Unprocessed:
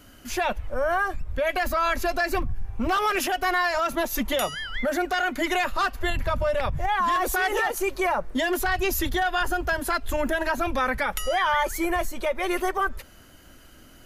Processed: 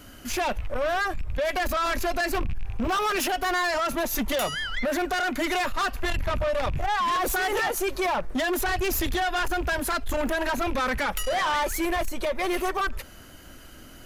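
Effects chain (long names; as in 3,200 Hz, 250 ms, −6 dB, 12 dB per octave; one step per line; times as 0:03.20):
loose part that buzzes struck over −34 dBFS, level −34 dBFS
0:11.13–0:11.55: hum removal 48.93 Hz, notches 38
soft clipping −26 dBFS, distortion −10 dB
level +4 dB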